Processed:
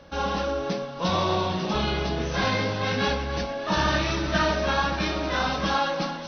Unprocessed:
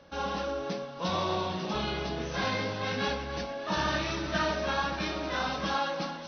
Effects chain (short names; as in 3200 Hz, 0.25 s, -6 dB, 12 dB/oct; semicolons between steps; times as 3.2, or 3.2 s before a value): low shelf 87 Hz +7 dB; gain +5.5 dB